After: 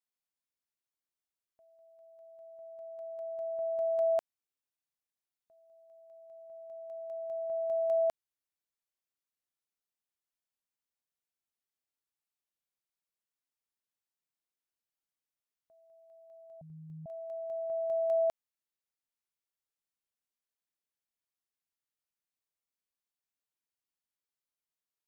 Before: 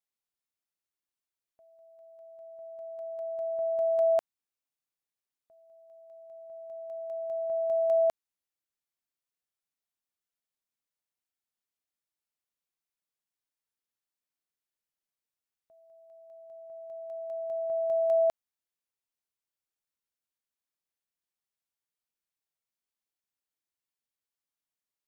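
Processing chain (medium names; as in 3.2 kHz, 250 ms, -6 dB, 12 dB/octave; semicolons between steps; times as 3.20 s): 16.61–17.06 s: frequency shift -500 Hz; trim -4 dB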